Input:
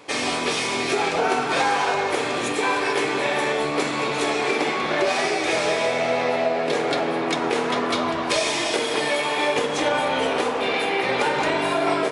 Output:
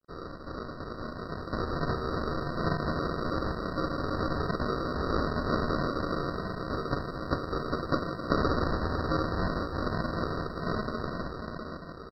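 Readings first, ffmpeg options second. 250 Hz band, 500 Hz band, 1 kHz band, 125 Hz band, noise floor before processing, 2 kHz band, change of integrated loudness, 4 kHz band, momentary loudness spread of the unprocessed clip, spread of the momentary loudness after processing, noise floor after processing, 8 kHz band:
-5.0 dB, -11.5 dB, -11.0 dB, +5.0 dB, -26 dBFS, -15.0 dB, -10.0 dB, -17.0 dB, 2 LU, 10 LU, -42 dBFS, under -30 dB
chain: -af "acontrast=24,highpass=260,aderivative,aecho=1:1:13|30:0.316|0.251,flanger=delay=0.6:depth=9.6:regen=80:speed=2:shape=sinusoidal,aresample=11025,acrusher=samples=13:mix=1:aa=0.000001,aresample=44100,aeval=exprs='sgn(val(0))*max(abs(val(0))-0.0015,0)':c=same,dynaudnorm=f=330:g=9:m=12dB,equalizer=f=1.3k:w=0.58:g=8.5,afftfilt=real='re*eq(mod(floor(b*sr/1024/1900),2),0)':imag='im*eq(mod(floor(b*sr/1024/1900),2),0)':win_size=1024:overlap=0.75,volume=-7.5dB"

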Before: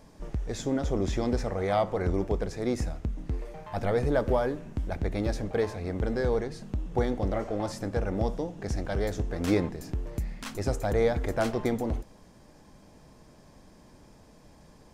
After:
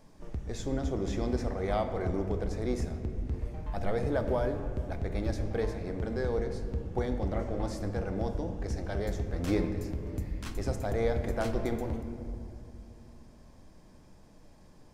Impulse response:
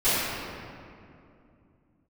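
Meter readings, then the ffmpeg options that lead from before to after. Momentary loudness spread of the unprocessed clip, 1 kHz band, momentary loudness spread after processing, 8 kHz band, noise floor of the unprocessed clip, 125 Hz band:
10 LU, -4.5 dB, 8 LU, -5.0 dB, -55 dBFS, -1.5 dB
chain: -filter_complex "[0:a]asplit=2[a][b];[1:a]atrim=start_sample=2205,lowshelf=f=140:g=9[c];[b][c]afir=irnorm=-1:irlink=0,volume=-24dB[d];[a][d]amix=inputs=2:normalize=0,volume=-5.5dB"

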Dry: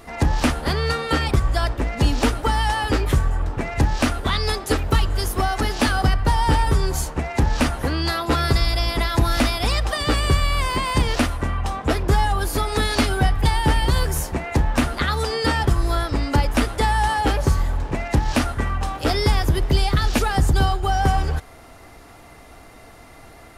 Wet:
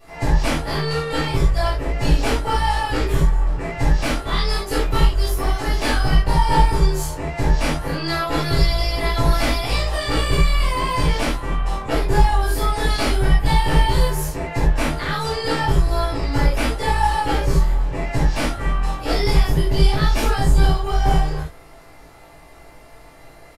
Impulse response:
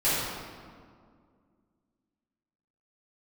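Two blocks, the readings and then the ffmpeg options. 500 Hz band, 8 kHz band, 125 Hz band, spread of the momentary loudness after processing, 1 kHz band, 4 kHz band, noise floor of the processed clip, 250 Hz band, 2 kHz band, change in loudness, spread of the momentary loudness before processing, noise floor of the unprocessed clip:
+1.5 dB, -1.5 dB, +0.5 dB, 5 LU, +0.5 dB, -0.5 dB, -44 dBFS, -1.0 dB, -0.5 dB, +0.5 dB, 4 LU, -44 dBFS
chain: -filter_complex "[0:a]aeval=exprs='0.422*(cos(1*acos(clip(val(0)/0.422,-1,1)))-cos(1*PI/2))+0.0596*(cos(2*acos(clip(val(0)/0.422,-1,1)))-cos(2*PI/2))+0.0299*(cos(3*acos(clip(val(0)/0.422,-1,1)))-cos(3*PI/2))':c=same,asplit=2[a][b];[b]adelay=18,volume=-4dB[c];[a][c]amix=inputs=2:normalize=0[d];[1:a]atrim=start_sample=2205,atrim=end_sample=4410[e];[d][e]afir=irnorm=-1:irlink=0,volume=-11.5dB"

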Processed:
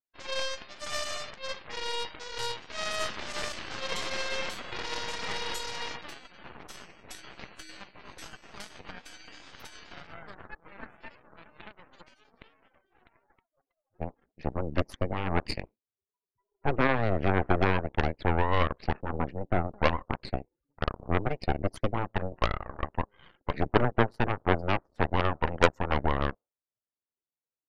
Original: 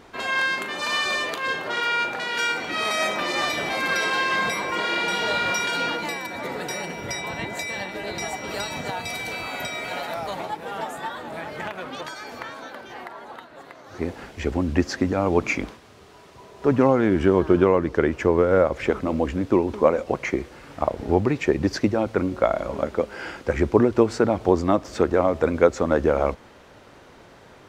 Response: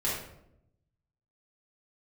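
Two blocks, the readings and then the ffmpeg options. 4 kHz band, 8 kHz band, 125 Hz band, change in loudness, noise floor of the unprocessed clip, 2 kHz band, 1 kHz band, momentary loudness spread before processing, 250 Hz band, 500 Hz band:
-7.0 dB, -7.5 dB, -2.5 dB, -7.5 dB, -49 dBFS, -9.0 dB, -5.5 dB, 13 LU, -11.0 dB, -11.0 dB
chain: -af "afftdn=nr=31:nf=-32,aeval=exprs='0.75*(cos(1*acos(clip(val(0)/0.75,-1,1)))-cos(1*PI/2))+0.237*(cos(3*acos(clip(val(0)/0.75,-1,1)))-cos(3*PI/2))+0.0841*(cos(8*acos(clip(val(0)/0.75,-1,1)))-cos(8*PI/2))':c=same,volume=-1.5dB"

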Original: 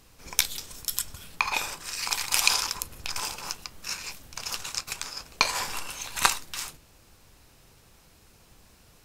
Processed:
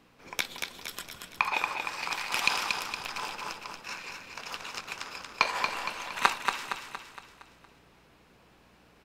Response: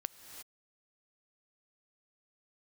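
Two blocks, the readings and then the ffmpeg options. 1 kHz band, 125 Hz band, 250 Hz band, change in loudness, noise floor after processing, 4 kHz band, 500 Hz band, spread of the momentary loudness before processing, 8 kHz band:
+1.5 dB, -6.0 dB, +0.5 dB, -3.5 dB, -61 dBFS, -5.5 dB, +1.5 dB, 12 LU, -12.5 dB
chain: -filter_complex "[0:a]aeval=exprs='val(0)+0.00141*(sin(2*PI*60*n/s)+sin(2*PI*2*60*n/s)/2+sin(2*PI*3*60*n/s)/3+sin(2*PI*4*60*n/s)/4+sin(2*PI*5*60*n/s)/5)':c=same,aeval=exprs='0.891*(cos(1*acos(clip(val(0)/0.891,-1,1)))-cos(1*PI/2))+0.0562*(cos(4*acos(clip(val(0)/0.891,-1,1)))-cos(4*PI/2))':c=same,acrossover=split=170 3500:gain=0.141 1 0.158[a][b][c];[a][b][c]amix=inputs=3:normalize=0,asplit=2[d][e];[e]aecho=0:1:232|464|696|928|1160|1392:0.562|0.281|0.141|0.0703|0.0351|0.0176[f];[d][f]amix=inputs=2:normalize=0"

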